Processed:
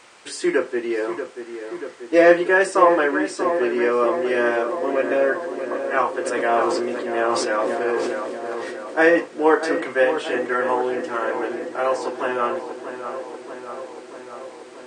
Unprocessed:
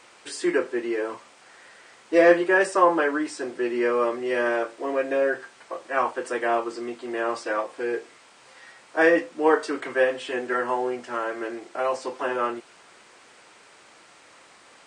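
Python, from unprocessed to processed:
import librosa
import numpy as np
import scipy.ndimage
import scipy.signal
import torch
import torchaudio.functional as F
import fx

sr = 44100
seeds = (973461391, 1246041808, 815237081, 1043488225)

y = fx.echo_filtered(x, sr, ms=635, feedback_pct=74, hz=2200.0, wet_db=-9.0)
y = fx.sustainer(y, sr, db_per_s=23.0, at=(6.25, 9.02), fade=0.02)
y = y * librosa.db_to_amplitude(3.0)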